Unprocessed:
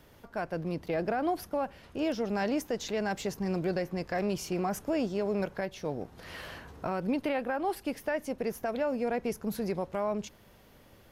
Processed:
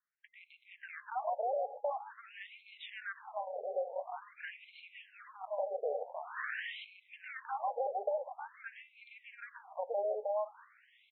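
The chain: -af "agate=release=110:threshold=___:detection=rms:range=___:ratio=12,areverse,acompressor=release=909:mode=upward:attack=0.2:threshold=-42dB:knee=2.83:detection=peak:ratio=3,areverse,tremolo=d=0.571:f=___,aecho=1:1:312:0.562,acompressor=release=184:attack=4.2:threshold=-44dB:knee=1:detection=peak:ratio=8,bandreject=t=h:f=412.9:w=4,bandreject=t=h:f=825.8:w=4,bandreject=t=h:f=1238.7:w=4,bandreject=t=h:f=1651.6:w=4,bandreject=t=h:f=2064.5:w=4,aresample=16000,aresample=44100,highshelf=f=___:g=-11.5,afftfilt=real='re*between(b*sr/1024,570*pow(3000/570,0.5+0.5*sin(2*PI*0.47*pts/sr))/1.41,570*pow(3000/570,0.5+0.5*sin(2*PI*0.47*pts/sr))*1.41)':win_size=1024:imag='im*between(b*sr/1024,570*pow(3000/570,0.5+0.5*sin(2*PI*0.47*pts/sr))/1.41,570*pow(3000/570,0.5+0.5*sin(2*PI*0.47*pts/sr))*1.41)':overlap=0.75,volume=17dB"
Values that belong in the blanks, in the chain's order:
-46dB, -40dB, 220, 3100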